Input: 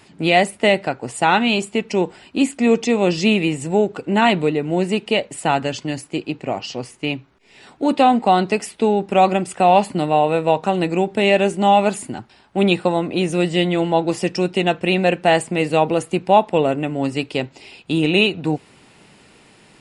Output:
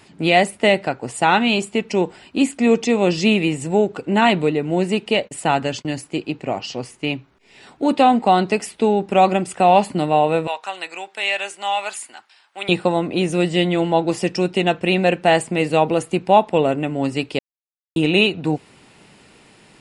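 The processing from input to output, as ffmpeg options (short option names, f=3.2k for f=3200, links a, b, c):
-filter_complex "[0:a]asettb=1/sr,asplit=3[a][b][c];[a]atrim=end=5.154[d];[b]atrim=start=5.15:end=5.97,asetpts=PTS-STARTPTS,afade=t=in:d=0.004:c=qsin,afade=t=out:st=0.816:d=0.004:c=qsin,agate=range=-23dB:threshold=-39dB:ratio=16:release=100:detection=peak[e];[c]atrim=start=5.966[f];[d][e]acrossfade=d=0.004:c1=hsin:c2=qsin[g];[g][f]acrossfade=d=0.004:c1=qsin:c2=hsin,asettb=1/sr,asplit=3[h][i][j];[h]atrim=end=10.474[k];[i]atrim=start=10.47:end=12.69,asetpts=PTS-STARTPTS,afade=t=in:d=0.004:c=qsin,afade=t=out:st=2.216:d=0.004:c=qsin,highpass=1.2k[l];[j]atrim=start=12.686[m];[k][l]acrossfade=d=0.004:c1=hsin:c2=qsin[n];[n][m]acrossfade=d=0.004:c1=qsin:c2=hsin,asplit=3[o][p][q];[o]atrim=end=17.39,asetpts=PTS-STARTPTS,afade=t=out:st=17.386:d=0.004:c=hsin[r];[p]atrim=start=17.39:end=17.96,asetpts=PTS-STARTPTS,volume=0[s];[q]atrim=start=17.96,asetpts=PTS-STARTPTS,afade=t=in:d=0.004:c=hsin[t];[r][s][t]concat=n=3:v=0:a=1"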